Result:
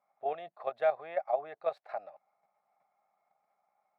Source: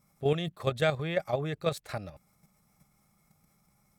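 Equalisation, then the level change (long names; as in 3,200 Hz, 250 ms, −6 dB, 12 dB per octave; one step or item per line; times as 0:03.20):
high-pass with resonance 710 Hz, resonance Q 4.9
high-frequency loss of the air 390 metres
parametric band 3,200 Hz −7 dB 0.29 octaves
−6.5 dB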